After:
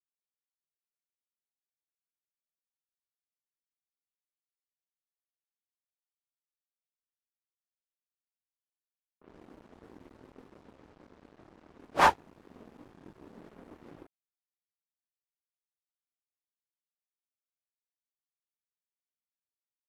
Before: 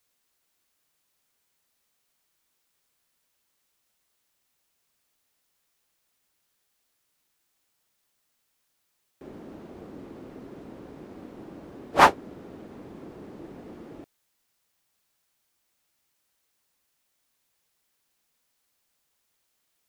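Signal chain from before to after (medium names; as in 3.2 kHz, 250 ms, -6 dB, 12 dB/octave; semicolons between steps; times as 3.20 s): chorus voices 6, 0.6 Hz, delay 25 ms, depth 2.4 ms; crossover distortion -48 dBFS; level-controlled noise filter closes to 1.5 kHz, open at -47 dBFS; trim -2.5 dB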